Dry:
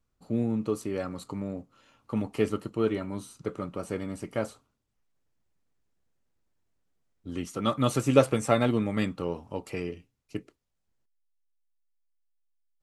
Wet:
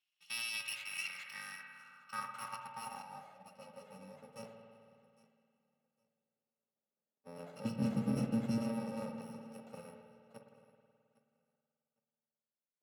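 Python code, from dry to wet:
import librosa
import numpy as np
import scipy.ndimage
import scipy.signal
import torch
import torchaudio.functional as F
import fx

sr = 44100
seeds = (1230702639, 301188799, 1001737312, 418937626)

p1 = fx.bit_reversed(x, sr, seeds[0], block=128)
p2 = scipy.signal.sosfilt(scipy.signal.butter(4, 140.0, 'highpass', fs=sr, output='sos'), p1)
p3 = fx.peak_eq(p2, sr, hz=480.0, db=-14.0, octaves=0.35)
p4 = 10.0 ** (-20.0 / 20.0) * np.tanh(p3 / 10.0 ** (-20.0 / 20.0))
p5 = fx.low_shelf_res(p4, sr, hz=380.0, db=12.0, q=1.5, at=(7.65, 8.58))
p6 = p5 + fx.echo_feedback(p5, sr, ms=808, feedback_pct=18, wet_db=-20, dry=0)
p7 = fx.rev_spring(p6, sr, rt60_s=2.4, pass_ms=(53,), chirp_ms=65, drr_db=4.0)
p8 = fx.filter_sweep_bandpass(p7, sr, from_hz=3000.0, to_hz=500.0, start_s=0.55, end_s=4.0, q=4.0)
p9 = fx.ensemble(p8, sr, at=(3.02, 4.36))
y = p9 * 10.0 ** (9.5 / 20.0)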